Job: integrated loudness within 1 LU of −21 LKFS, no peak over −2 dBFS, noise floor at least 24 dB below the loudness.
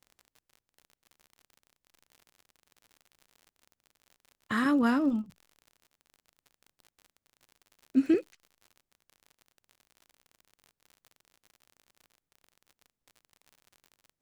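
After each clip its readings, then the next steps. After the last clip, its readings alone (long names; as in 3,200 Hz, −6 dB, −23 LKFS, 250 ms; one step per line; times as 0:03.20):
crackle rate 56 per second; integrated loudness −28.5 LKFS; sample peak −14.5 dBFS; target loudness −21.0 LKFS
→ click removal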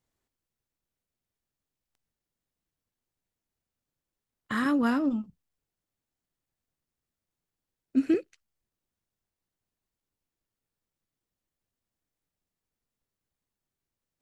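crackle rate 0.070 per second; integrated loudness −28.0 LKFS; sample peak −14.5 dBFS; target loudness −21.0 LKFS
→ level +7 dB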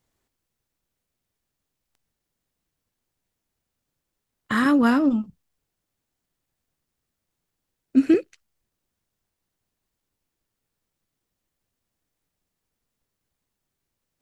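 integrated loudness −21.0 LKFS; sample peak −7.5 dBFS; background noise floor −82 dBFS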